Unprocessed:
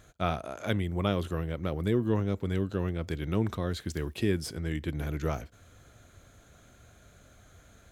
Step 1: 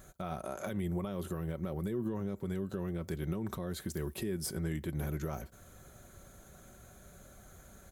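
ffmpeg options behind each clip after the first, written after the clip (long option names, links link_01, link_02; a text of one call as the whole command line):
ffmpeg -i in.wav -af "firequalizer=gain_entry='entry(910,0);entry(2700,-7);entry(11000,8)':delay=0.05:min_phase=1,alimiter=level_in=4.5dB:limit=-24dB:level=0:latency=1:release=152,volume=-4.5dB,aecho=1:1:5.3:0.43,volume=1.5dB" out.wav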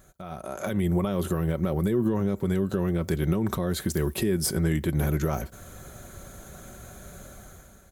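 ffmpeg -i in.wav -af "dynaudnorm=framelen=240:gausssize=5:maxgain=12dB,volume=-1dB" out.wav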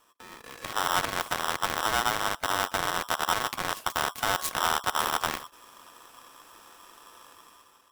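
ffmpeg -i in.wav -af "afreqshift=21,aeval=exprs='0.224*(cos(1*acos(clip(val(0)/0.224,-1,1)))-cos(1*PI/2))+0.0398*(cos(3*acos(clip(val(0)/0.224,-1,1)))-cos(3*PI/2))+0.0178*(cos(6*acos(clip(val(0)/0.224,-1,1)))-cos(6*PI/2))+0.0282*(cos(7*acos(clip(val(0)/0.224,-1,1)))-cos(7*PI/2))':channel_layout=same,aeval=exprs='val(0)*sgn(sin(2*PI*1100*n/s))':channel_layout=same" out.wav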